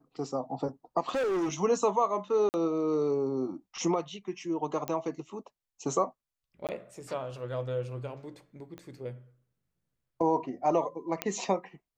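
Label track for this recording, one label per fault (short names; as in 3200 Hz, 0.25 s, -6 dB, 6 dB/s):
1.090000	1.540000	clipped -26.5 dBFS
2.490000	2.540000	gap 49 ms
4.880000	4.880000	pop -17 dBFS
6.670000	6.690000	gap 18 ms
8.780000	8.780000	pop -30 dBFS
11.220000	11.220000	pop -13 dBFS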